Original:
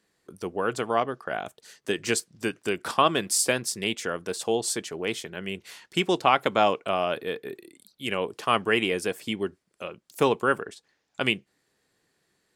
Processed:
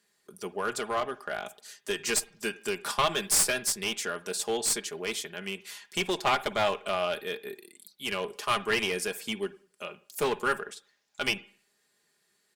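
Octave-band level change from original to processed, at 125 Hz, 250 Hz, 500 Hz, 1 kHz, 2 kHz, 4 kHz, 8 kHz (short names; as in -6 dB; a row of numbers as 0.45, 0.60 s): -7.0, -7.5, -5.0, -5.0, -2.0, -1.0, +1.5 dB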